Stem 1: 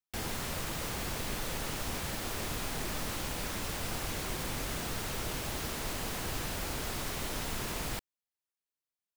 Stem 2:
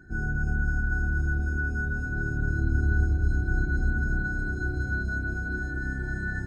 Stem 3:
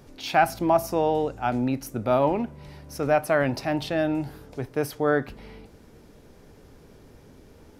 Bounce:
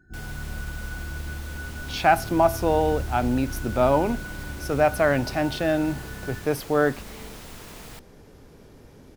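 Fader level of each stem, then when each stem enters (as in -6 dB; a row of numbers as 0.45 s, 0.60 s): -6.0 dB, -7.5 dB, +1.5 dB; 0.00 s, 0.00 s, 1.70 s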